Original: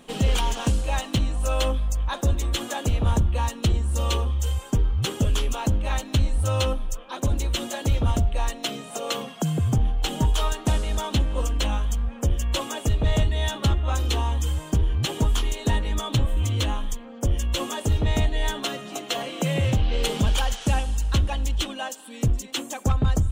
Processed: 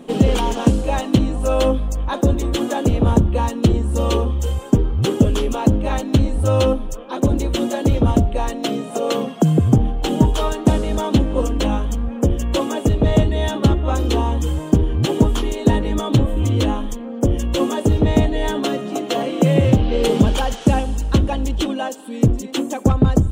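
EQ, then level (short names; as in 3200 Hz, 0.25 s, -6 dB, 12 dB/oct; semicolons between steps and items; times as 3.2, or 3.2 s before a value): bell 310 Hz +14 dB 2.8 oct; 0.0 dB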